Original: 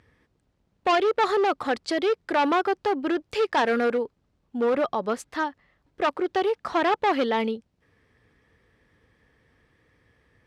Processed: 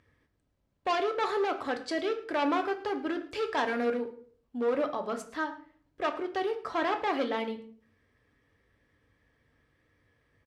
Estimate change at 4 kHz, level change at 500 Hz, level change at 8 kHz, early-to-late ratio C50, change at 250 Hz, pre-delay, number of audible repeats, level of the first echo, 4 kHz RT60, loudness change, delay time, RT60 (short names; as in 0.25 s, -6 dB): -6.0 dB, -6.5 dB, -6.5 dB, 12.0 dB, -5.5 dB, 3 ms, 1, -18.5 dB, 0.35 s, -6.5 dB, 0.109 s, 0.50 s